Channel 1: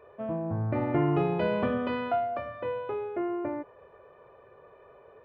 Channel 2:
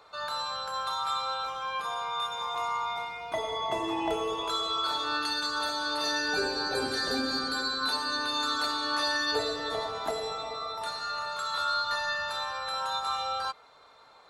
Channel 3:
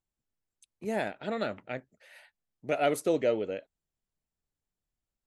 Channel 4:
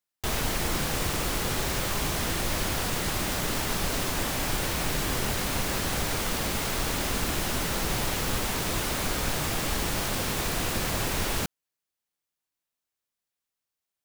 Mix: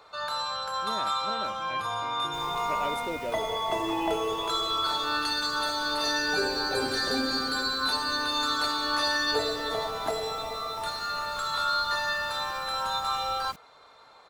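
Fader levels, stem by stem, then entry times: -18.5 dB, +2.0 dB, -8.0 dB, -20.0 dB; 1.30 s, 0.00 s, 0.00 s, 2.10 s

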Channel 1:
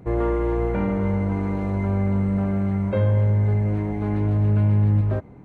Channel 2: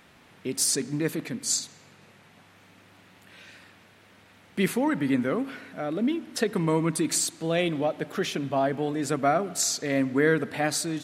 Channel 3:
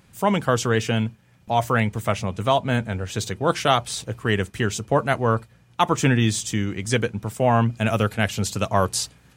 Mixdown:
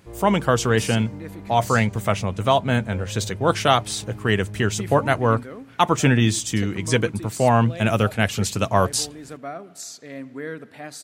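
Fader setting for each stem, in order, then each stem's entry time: -15.5 dB, -10.5 dB, +1.5 dB; 0.00 s, 0.20 s, 0.00 s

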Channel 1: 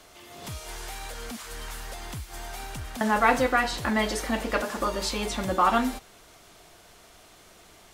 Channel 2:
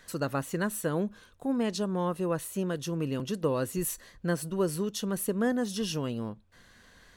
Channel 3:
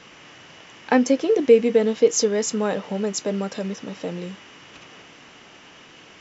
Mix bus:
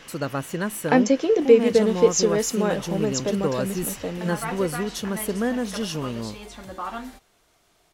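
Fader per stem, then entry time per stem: -10.5 dB, +3.0 dB, -0.5 dB; 1.20 s, 0.00 s, 0.00 s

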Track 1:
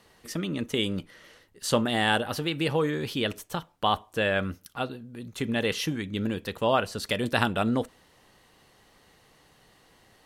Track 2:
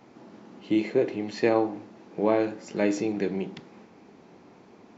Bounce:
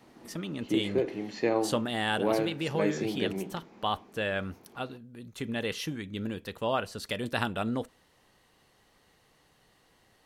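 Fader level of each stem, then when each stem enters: -5.5 dB, -4.5 dB; 0.00 s, 0.00 s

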